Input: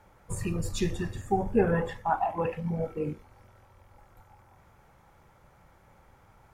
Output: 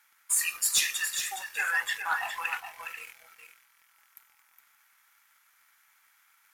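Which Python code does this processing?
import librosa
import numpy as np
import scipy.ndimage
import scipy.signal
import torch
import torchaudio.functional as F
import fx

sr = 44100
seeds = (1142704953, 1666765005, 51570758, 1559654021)

y = scipy.signal.sosfilt(scipy.signal.butter(4, 1500.0, 'highpass', fs=sr, output='sos'), x)
y = fx.high_shelf(y, sr, hz=7300.0, db=8.0)
y = fx.leveller(y, sr, passes=2)
y = fx.peak_eq(y, sr, hz=12000.0, db=5.0, octaves=0.29)
y = y + 10.0 ** (-8.0 / 20.0) * np.pad(y, (int(414 * sr / 1000.0), 0))[:len(y)]
y = y * 10.0 ** (5.0 / 20.0)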